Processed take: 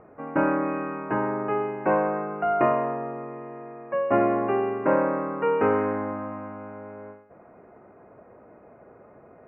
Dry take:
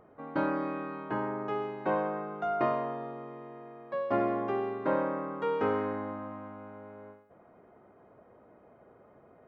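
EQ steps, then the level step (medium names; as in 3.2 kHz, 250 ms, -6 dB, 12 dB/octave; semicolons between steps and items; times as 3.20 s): Chebyshev low-pass 2.8 kHz, order 8; +7.5 dB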